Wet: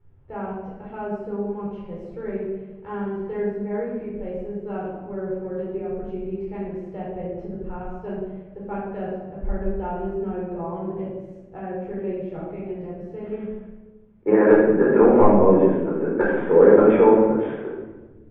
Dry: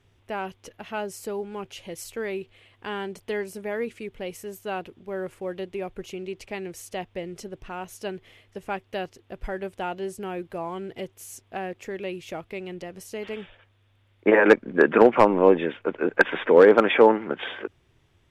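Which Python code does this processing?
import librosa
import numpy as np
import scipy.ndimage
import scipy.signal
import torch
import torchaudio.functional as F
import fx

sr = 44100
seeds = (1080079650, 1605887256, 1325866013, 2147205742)

y = scipy.signal.sosfilt(scipy.signal.butter(2, 1100.0, 'lowpass', fs=sr, output='sos'), x)
y = fx.low_shelf(y, sr, hz=170.0, db=9.5)
y = fx.room_shoebox(y, sr, seeds[0], volume_m3=760.0, walls='mixed', distance_m=4.3)
y = y * 10.0 ** (-8.5 / 20.0)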